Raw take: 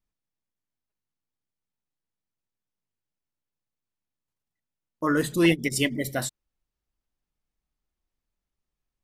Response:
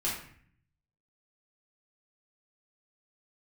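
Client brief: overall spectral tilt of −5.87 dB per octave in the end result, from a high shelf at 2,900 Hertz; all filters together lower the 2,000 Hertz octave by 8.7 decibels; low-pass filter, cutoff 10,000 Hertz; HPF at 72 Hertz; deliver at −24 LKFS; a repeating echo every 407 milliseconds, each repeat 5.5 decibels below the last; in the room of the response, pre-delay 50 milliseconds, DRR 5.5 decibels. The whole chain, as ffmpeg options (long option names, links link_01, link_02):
-filter_complex "[0:a]highpass=72,lowpass=10000,equalizer=frequency=2000:width_type=o:gain=-9,highshelf=frequency=2900:gain=-6,aecho=1:1:407|814|1221|1628|2035|2442|2849:0.531|0.281|0.149|0.079|0.0419|0.0222|0.0118,asplit=2[link_01][link_02];[1:a]atrim=start_sample=2205,adelay=50[link_03];[link_02][link_03]afir=irnorm=-1:irlink=0,volume=-11.5dB[link_04];[link_01][link_04]amix=inputs=2:normalize=0,volume=2dB"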